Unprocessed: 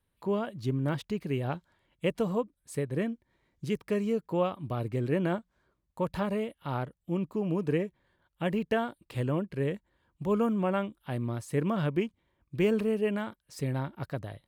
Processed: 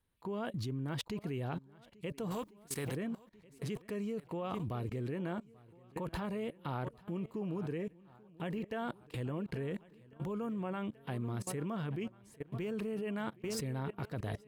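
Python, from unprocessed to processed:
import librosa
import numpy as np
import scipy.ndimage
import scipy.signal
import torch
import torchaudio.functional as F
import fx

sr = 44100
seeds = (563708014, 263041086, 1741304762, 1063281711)

y = fx.spec_flatten(x, sr, power=0.66, at=(2.3, 2.94), fade=0.02)
y = fx.echo_swing(y, sr, ms=1393, ratio=1.5, feedback_pct=31, wet_db=-19)
y = fx.level_steps(y, sr, step_db=22)
y = fx.notch(y, sr, hz=580.0, q=12.0)
y = y * librosa.db_to_amplitude(7.0)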